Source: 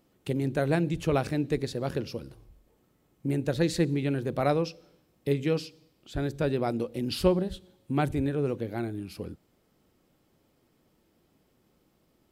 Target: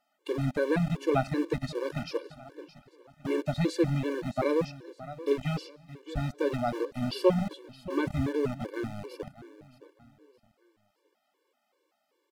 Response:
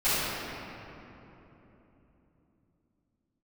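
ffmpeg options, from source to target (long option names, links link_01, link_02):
-filter_complex "[0:a]asettb=1/sr,asplit=3[link_01][link_02][link_03];[link_01]atrim=end=1.974[link_04];[link_02]atrim=start=1.97:end=3.41,asetpts=PTS-STARTPTS,afade=type=in:duration=0.004:curve=qsin,afade=type=out:start_time=1.436:duration=0.004:curve=qsin,asplit=2[link_05][link_06];[link_06]highpass=frequency=720:poles=1,volume=16dB,asoftclip=type=tanh:threshold=-17.5dB[link_07];[link_05][link_07]amix=inputs=2:normalize=0,lowpass=frequency=3700:poles=1,volume=-6dB[link_08];[link_03]atrim=start=3.406[link_09];[link_04][link_08]acrossfade=duration=0.004:curve1=hsin:curve2=qsin[link_10];[link_10][link_09]acrossfade=duration=0.004:curve1=qsin:curve2=hsin,acrossover=split=410|5100[link_11][link_12][link_13];[link_11]aeval=exprs='val(0)*gte(abs(val(0)),0.0266)':channel_layout=same[link_14];[link_14][link_12][link_13]amix=inputs=3:normalize=0,aemphasis=mode=reproduction:type=cd,asplit=2[link_15][link_16];[link_16]aecho=0:1:617|1234|1851:0.158|0.0586|0.0217[link_17];[link_15][link_17]amix=inputs=2:normalize=0,afftfilt=real='re*gt(sin(2*PI*2.6*pts/sr)*(1-2*mod(floor(b*sr/1024/300),2)),0)':imag='im*gt(sin(2*PI*2.6*pts/sr)*(1-2*mod(floor(b*sr/1024/300),2)),0)':win_size=1024:overlap=0.75,volume=2dB"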